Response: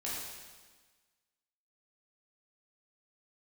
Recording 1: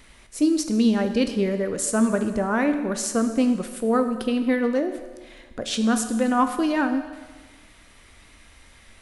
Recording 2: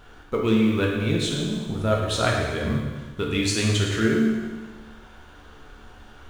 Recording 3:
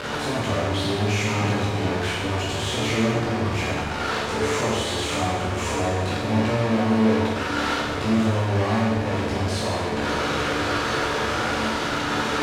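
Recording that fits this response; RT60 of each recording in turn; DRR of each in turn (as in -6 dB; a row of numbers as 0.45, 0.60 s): 3; 1.4, 1.4, 1.4 s; 7.5, -2.0, -7.5 dB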